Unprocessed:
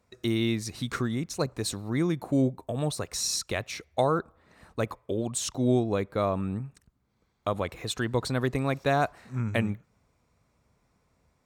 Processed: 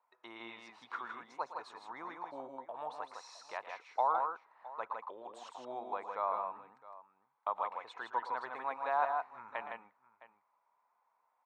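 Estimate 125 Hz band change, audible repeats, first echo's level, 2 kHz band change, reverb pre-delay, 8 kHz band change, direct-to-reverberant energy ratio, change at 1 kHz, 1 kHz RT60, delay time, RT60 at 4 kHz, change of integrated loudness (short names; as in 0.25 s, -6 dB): under -40 dB, 3, -12.5 dB, -9.0 dB, none, under -25 dB, none, -0.5 dB, none, 0.114 s, none, -10.5 dB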